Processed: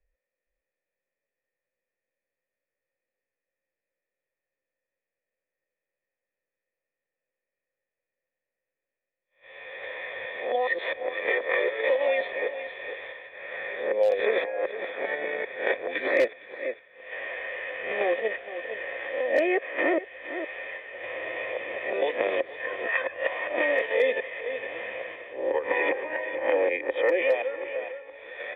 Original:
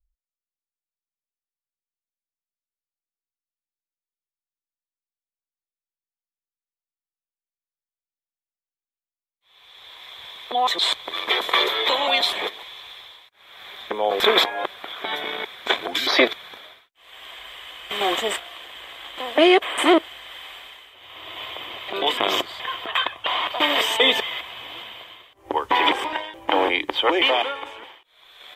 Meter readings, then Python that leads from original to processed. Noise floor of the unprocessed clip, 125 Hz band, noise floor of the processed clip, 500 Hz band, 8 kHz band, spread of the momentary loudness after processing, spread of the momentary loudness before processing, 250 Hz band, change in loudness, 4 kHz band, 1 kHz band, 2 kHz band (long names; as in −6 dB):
below −85 dBFS, can't be measured, below −85 dBFS, 0.0 dB, below −25 dB, 12 LU, 20 LU, −9.5 dB, −7.0 dB, −21.0 dB, −11.0 dB, −2.5 dB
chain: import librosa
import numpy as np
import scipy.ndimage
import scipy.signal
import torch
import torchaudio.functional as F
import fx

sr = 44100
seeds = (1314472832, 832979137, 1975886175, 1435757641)

p1 = fx.spec_swells(x, sr, rise_s=0.31)
p2 = fx.level_steps(p1, sr, step_db=22)
p3 = p1 + (p2 * 10.0 ** (-2.5 / 20.0))
p4 = fx.formant_cascade(p3, sr, vowel='e')
p5 = p4 + 10.0 ** (-18.0 / 20.0) * np.pad(p4, (int(462 * sr / 1000.0), 0))[:len(p4)]
p6 = np.clip(p5, -10.0 ** (-15.0 / 20.0), 10.0 ** (-15.0 / 20.0))
p7 = fx.band_squash(p6, sr, depth_pct=70)
y = p7 * 10.0 ** (4.0 / 20.0)